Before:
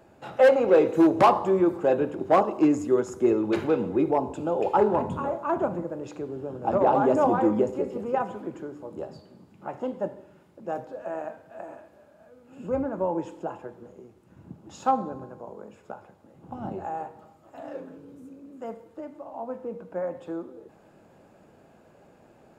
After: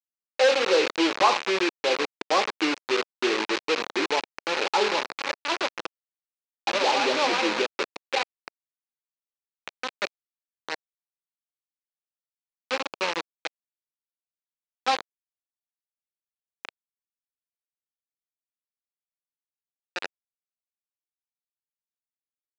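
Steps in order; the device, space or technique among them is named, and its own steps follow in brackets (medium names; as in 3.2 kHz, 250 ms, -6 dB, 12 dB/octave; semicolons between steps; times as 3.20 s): hand-held game console (bit crusher 4-bit; cabinet simulation 440–5900 Hz, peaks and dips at 670 Hz -7 dB, 2.5 kHz +5 dB, 4.1 kHz +4 dB)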